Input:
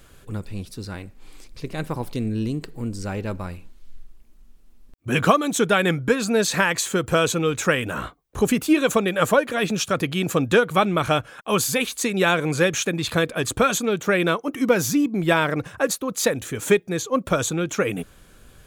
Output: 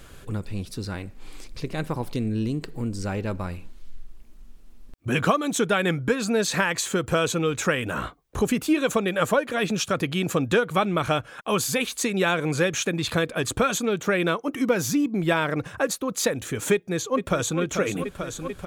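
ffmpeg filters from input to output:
ffmpeg -i in.wav -filter_complex "[0:a]asplit=2[link_01][link_02];[link_02]afade=type=in:start_time=16.73:duration=0.01,afade=type=out:start_time=17.59:duration=0.01,aecho=0:1:440|880|1320|1760|2200|2640|3080|3520|3960|4400|4840|5280:0.316228|0.237171|0.177878|0.133409|0.100056|0.0750423|0.0562817|0.0422113|0.0316585|0.0237439|0.0178079|0.0133559[link_03];[link_01][link_03]amix=inputs=2:normalize=0,highshelf=frequency=10000:gain=-4.5,acompressor=threshold=-37dB:ratio=1.5,volume=4.5dB" out.wav

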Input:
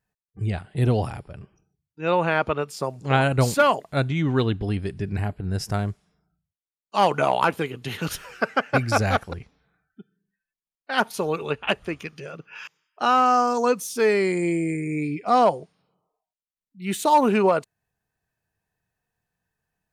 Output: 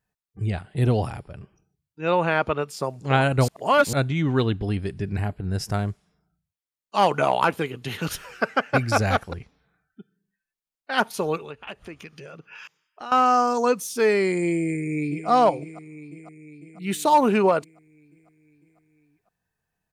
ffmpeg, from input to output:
ffmpeg -i in.wav -filter_complex "[0:a]asettb=1/sr,asplit=3[link_01][link_02][link_03];[link_01]atrim=end=11.374[link_04];[link_02]atrim=start=11.37:end=13.12,asetpts=PTS-STARTPTS,afade=type=in:duration=0.004:curve=qsin,afade=type=out:start_time=1.746:duration=0.004:curve=qsin,acompressor=threshold=-39dB:ratio=2.5:attack=3.2:release=140:knee=1:detection=peak[link_05];[link_03]atrim=start=13.116[link_06];[link_04][link_05]acrossfade=duration=0.004:curve1=hsin:curve2=qsin[link_07];[link_07][link_06]acrossfade=duration=0.004:curve1=qsin:curve2=hsin,asplit=2[link_08][link_09];[link_09]afade=type=in:start_time=14.61:duration=0.01,afade=type=out:start_time=15.28:duration=0.01,aecho=0:1:500|1000|1500|2000|2500|3000|3500|4000:0.281838|0.183195|0.119077|0.0773998|0.0503099|0.0327014|0.0212559|0.0138164[link_10];[link_08][link_10]amix=inputs=2:normalize=0,asplit=3[link_11][link_12][link_13];[link_11]atrim=end=3.482[link_14];[link_12]atrim=start=3.478:end=3.932,asetpts=PTS-STARTPTS,areverse[link_15];[link_13]atrim=start=3.928[link_16];[link_14][link_15]acrossfade=duration=0.004:curve1=hsin:curve2=hsin[link_17];[link_17][link_16]acrossfade=duration=0.004:curve1=hsin:curve2=hsin" out.wav

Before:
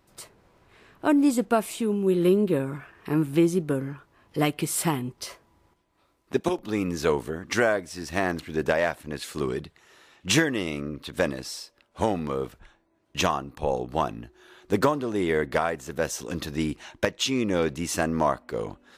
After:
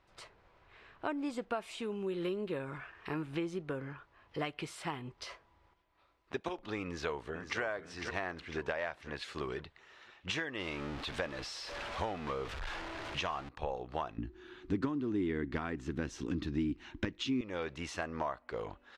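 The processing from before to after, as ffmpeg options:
ffmpeg -i in.wav -filter_complex "[0:a]asettb=1/sr,asplit=3[link_01][link_02][link_03];[link_01]atrim=end=1.624[link_04];[link_02]atrim=start=1.62:end=3.22,asetpts=PTS-STARTPTS,afade=type=in:duration=0.004:curve=qsin,afade=type=out:start_time=1.596:duration=0.004:curve=qsin,highshelf=frequency=4000:gain=5.5[link_05];[link_03]atrim=start=3.216[link_06];[link_04][link_05]acrossfade=duration=0.004:curve1=hsin:curve2=qsin[link_07];[link_07][link_06]acrossfade=duration=0.004:curve1=qsin:curve2=hsin,asplit=2[link_08][link_09];[link_09]afade=type=in:start_time=6.84:duration=0.01,afade=type=out:start_time=7.6:duration=0.01,aecho=0:1:500|1000|1500|2000|2500:0.316228|0.158114|0.0790569|0.0395285|0.0197642[link_10];[link_08][link_10]amix=inputs=2:normalize=0,asettb=1/sr,asplit=3[link_11][link_12][link_13];[link_11]atrim=end=10.594[link_14];[link_12]atrim=start=10.59:end=13.49,asetpts=PTS-STARTPTS,afade=type=in:duration=0.004:curve=qsin,afade=type=out:start_time=2.896:duration=0.004:curve=qsin,aeval=exprs='val(0)+0.5*0.0282*sgn(val(0))':channel_layout=same[link_15];[link_13]atrim=start=13.486[link_16];[link_14][link_15]acrossfade=duration=0.004:curve1=hsin:curve2=qsin[link_17];[link_17][link_16]acrossfade=duration=0.004:curve1=qsin:curve2=hsin,asettb=1/sr,asplit=3[link_18][link_19][link_20];[link_18]atrim=end=14.184[link_21];[link_19]atrim=start=14.18:end=17.41,asetpts=PTS-STARTPTS,afade=type=in:duration=0.004:curve=qsin,afade=type=out:start_time=3.226:duration=0.004:curve=qsin,lowshelf=frequency=410:width_type=q:width=3:gain=11.5[link_22];[link_20]atrim=start=17.406[link_23];[link_21][link_22]acrossfade=duration=0.004:curve1=hsin:curve2=qsin[link_24];[link_24][link_23]acrossfade=duration=0.004:curve1=qsin:curve2=hsin,equalizer=frequency=210:width_type=o:width=2.3:gain=-11,acompressor=threshold=-34dB:ratio=3,lowpass=3600,volume=-1dB" out.wav

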